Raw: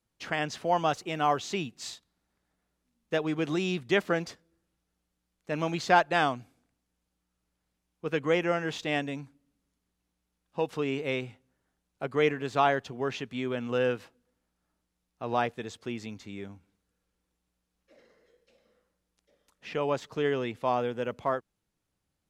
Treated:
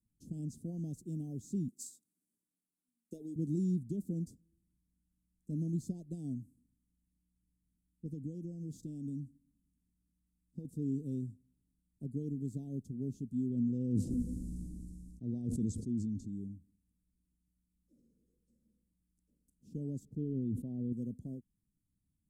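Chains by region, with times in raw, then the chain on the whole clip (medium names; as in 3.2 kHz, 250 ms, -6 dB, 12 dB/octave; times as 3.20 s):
1.68–3.36 s: high-pass 480 Hz + transient shaper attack +12 dB, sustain +6 dB
8.06–10.65 s: peaking EQ 4.7 kHz +4.5 dB 0.55 oct + compression 3:1, threshold -32 dBFS
13.50–16.33 s: low-pass 6.6 kHz + decay stretcher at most 22 dB/s
20.05–20.93 s: resonant high shelf 3.6 kHz -12.5 dB, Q 1.5 + decay stretcher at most 43 dB/s
whole clip: peak limiter -18 dBFS; elliptic band-stop 250–8300 Hz, stop band 80 dB; treble shelf 3.5 kHz -7 dB; trim +2 dB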